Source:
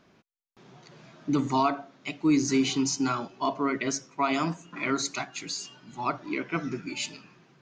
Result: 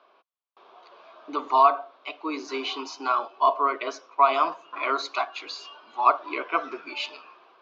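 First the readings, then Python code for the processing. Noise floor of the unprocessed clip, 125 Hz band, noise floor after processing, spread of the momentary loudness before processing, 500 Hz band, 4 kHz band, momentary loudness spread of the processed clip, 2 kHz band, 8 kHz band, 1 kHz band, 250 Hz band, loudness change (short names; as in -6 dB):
-62 dBFS, under -30 dB, -62 dBFS, 10 LU, +3.5 dB, 0.0 dB, 14 LU, +1.5 dB, under -10 dB, +9.0 dB, -11.5 dB, +3.0 dB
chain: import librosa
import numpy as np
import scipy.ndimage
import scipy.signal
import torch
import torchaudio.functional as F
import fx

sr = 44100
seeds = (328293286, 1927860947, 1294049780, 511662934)

p1 = fx.rider(x, sr, range_db=10, speed_s=2.0)
p2 = x + (p1 * librosa.db_to_amplitude(1.0))
p3 = fx.cabinet(p2, sr, low_hz=440.0, low_slope=24, high_hz=3900.0, hz=(660.0, 1100.0, 1900.0), db=(4, 10, -10))
y = p3 * librosa.db_to_amplitude(-3.5)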